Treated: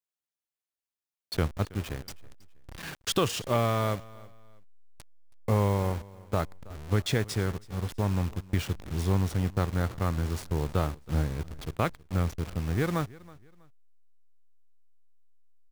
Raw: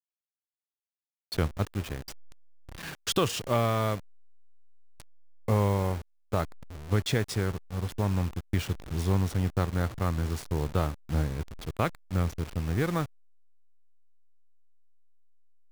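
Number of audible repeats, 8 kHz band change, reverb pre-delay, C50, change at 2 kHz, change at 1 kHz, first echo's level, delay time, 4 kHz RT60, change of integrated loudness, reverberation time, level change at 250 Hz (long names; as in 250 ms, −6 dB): 2, 0.0 dB, no reverb audible, no reverb audible, 0.0 dB, 0.0 dB, −21.5 dB, 323 ms, no reverb audible, 0.0 dB, no reverb audible, 0.0 dB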